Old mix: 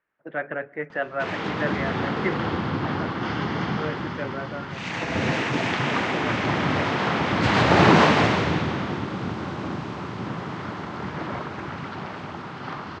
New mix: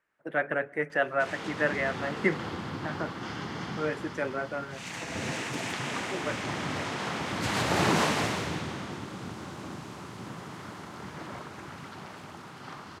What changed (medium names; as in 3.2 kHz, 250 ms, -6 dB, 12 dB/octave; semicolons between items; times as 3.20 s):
background -10.5 dB; master: remove distance through air 180 m